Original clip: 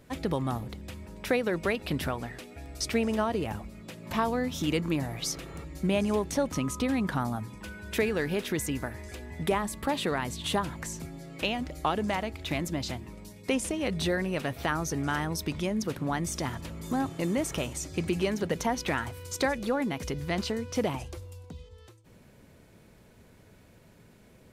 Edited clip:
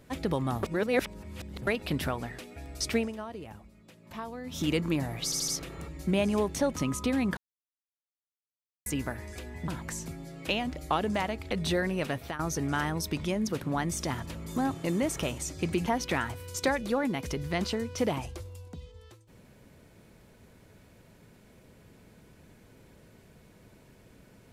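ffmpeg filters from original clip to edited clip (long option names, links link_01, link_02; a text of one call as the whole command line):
ffmpeg -i in.wav -filter_complex "[0:a]asplit=14[link_01][link_02][link_03][link_04][link_05][link_06][link_07][link_08][link_09][link_10][link_11][link_12][link_13][link_14];[link_01]atrim=end=0.632[link_15];[link_02]atrim=start=0.628:end=1.672,asetpts=PTS-STARTPTS,areverse[link_16];[link_03]atrim=start=1.668:end=3.13,asetpts=PTS-STARTPTS,afade=type=out:start_time=1.292:duration=0.17:silence=0.266073[link_17];[link_04]atrim=start=3.13:end=4.44,asetpts=PTS-STARTPTS,volume=-11.5dB[link_18];[link_05]atrim=start=4.44:end=5.322,asetpts=PTS-STARTPTS,afade=type=in:duration=0.17:silence=0.266073[link_19];[link_06]atrim=start=5.238:end=5.322[link_20];[link_07]atrim=start=5.238:end=5.322[link_21];[link_08]atrim=start=5.238:end=7.13,asetpts=PTS-STARTPTS,afade=type=out:start_time=1.888:duration=0.004:curve=hsin[link_22];[link_09]atrim=start=7.13:end=8.62,asetpts=PTS-STARTPTS,volume=0[link_23];[link_10]atrim=start=8.62:end=9.442,asetpts=PTS-STARTPTS,afade=type=in:duration=0.004:curve=hsin[link_24];[link_11]atrim=start=10.618:end=12.452[link_25];[link_12]atrim=start=13.858:end=14.74,asetpts=PTS-STARTPTS,afade=type=out:start_time=0.532:duration=0.35:curve=qsin:silence=0.177828[link_26];[link_13]atrim=start=14.74:end=18.212,asetpts=PTS-STARTPTS,afade=type=in:duration=0.004:curve=hsin:silence=0.177828[link_27];[link_14]atrim=start=18.628[link_28];[link_15][link_16]acrossfade=duration=0.004:curve1=hsin:curve2=hsin[link_29];[link_17][link_18][link_19]concat=n=3:v=0:a=1[link_30];[link_29][link_30]acrossfade=duration=0.004:curve1=hsin:curve2=hsin[link_31];[link_31][link_20]acrossfade=duration=0.004:curve1=hsin:curve2=hsin[link_32];[link_32][link_21]acrossfade=duration=0.004:curve1=hsin:curve2=hsin[link_33];[link_22][link_23][link_24]concat=n=3:v=0:a=1[link_34];[link_33][link_34]acrossfade=duration=0.004:curve1=hsin:curve2=hsin[link_35];[link_35][link_25]acrossfade=duration=0.004:curve1=hsin:curve2=hsin[link_36];[link_26][link_27]concat=n=2:v=0:a=1[link_37];[link_36][link_37]acrossfade=duration=0.004:curve1=hsin:curve2=hsin[link_38];[link_38][link_28]acrossfade=duration=0.004:curve1=hsin:curve2=hsin" out.wav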